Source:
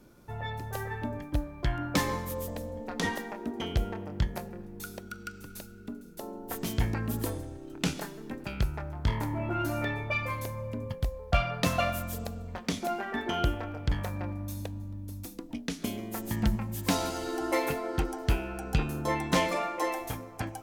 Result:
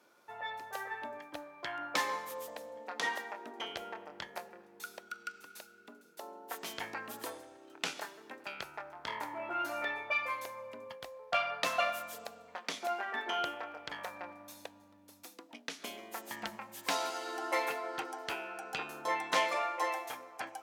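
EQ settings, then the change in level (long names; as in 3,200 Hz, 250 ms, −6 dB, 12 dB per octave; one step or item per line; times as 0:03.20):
high-pass filter 700 Hz 12 dB per octave
high-shelf EQ 6,700 Hz −9.5 dB
0.0 dB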